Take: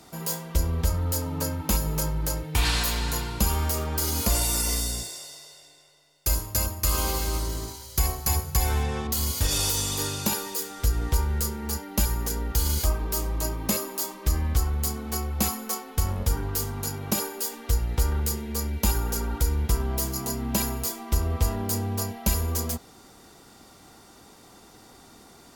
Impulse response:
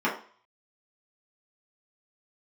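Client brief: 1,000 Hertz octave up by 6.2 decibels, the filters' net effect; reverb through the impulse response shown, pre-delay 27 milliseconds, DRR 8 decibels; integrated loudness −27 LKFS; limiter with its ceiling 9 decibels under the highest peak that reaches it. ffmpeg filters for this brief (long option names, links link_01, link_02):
-filter_complex "[0:a]equalizer=frequency=1000:width_type=o:gain=7.5,alimiter=limit=-18.5dB:level=0:latency=1,asplit=2[link_01][link_02];[1:a]atrim=start_sample=2205,adelay=27[link_03];[link_02][link_03]afir=irnorm=-1:irlink=0,volume=-21.5dB[link_04];[link_01][link_04]amix=inputs=2:normalize=0,volume=2dB"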